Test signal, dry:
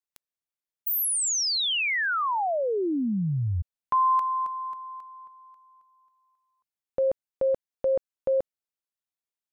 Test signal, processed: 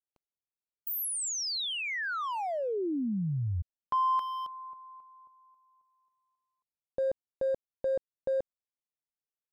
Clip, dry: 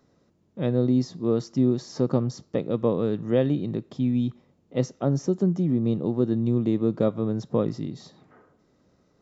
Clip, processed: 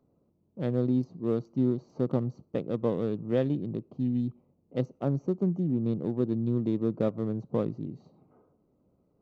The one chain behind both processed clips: local Wiener filter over 25 samples; trim -4.5 dB

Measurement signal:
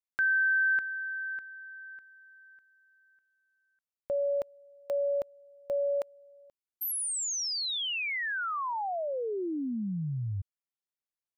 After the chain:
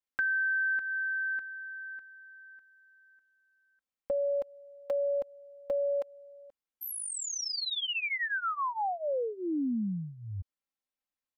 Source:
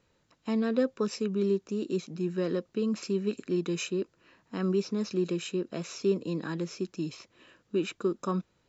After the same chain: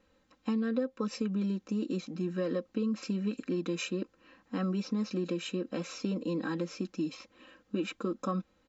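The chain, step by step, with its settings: treble shelf 5.1 kHz -9 dB; comb 3.8 ms, depth 85%; compression 6:1, threshold -28 dBFS

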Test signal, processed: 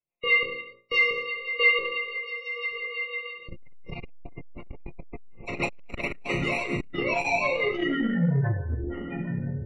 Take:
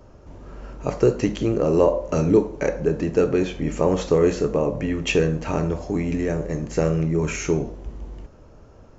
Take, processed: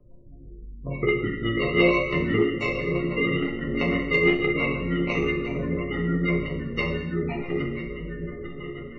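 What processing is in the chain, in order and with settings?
bass shelf 200 Hz +6.5 dB; echo that smears into a reverb 1096 ms, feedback 42%, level -8 dB; sample-and-hold 27×; rotary cabinet horn 6 Hz; hum notches 60/120/180/240/300/360 Hz; spectral gate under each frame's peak -20 dB strong; high-order bell 2.2 kHz +12.5 dB 1 oct; chord resonator A#2 minor, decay 0.37 s; gated-style reverb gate 340 ms falling, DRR 3 dB; transformer saturation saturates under 280 Hz; trim +8.5 dB

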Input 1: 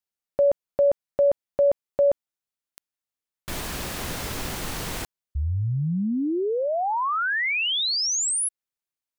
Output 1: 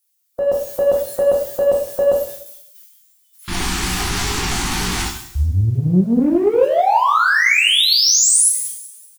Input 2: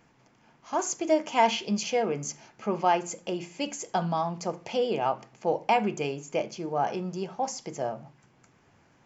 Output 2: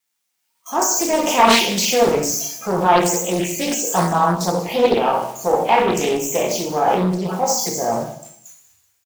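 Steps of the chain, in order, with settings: zero-crossing glitches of -27.5 dBFS; spectral noise reduction 20 dB; de-hum 62.36 Hz, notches 2; gate -48 dBFS, range -19 dB; transient shaper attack -1 dB, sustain +8 dB; level rider gain up to 7 dB; in parallel at -9 dB: saturation -21 dBFS; on the sum: doubling 17 ms -7.5 dB; on a send: feedback echo behind a high-pass 191 ms, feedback 34%, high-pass 5.2 kHz, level -14.5 dB; on the sum: plate-style reverb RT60 0.68 s, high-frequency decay 0.95×, DRR -1 dB; loudspeaker Doppler distortion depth 0.5 ms; trim -2.5 dB

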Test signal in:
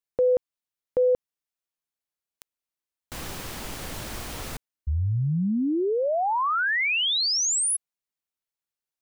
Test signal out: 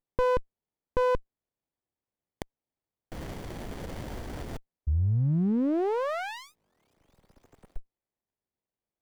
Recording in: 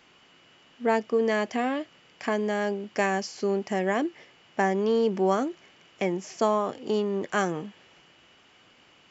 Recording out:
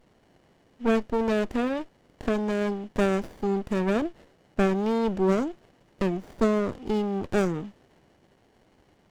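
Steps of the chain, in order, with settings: sliding maximum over 33 samples

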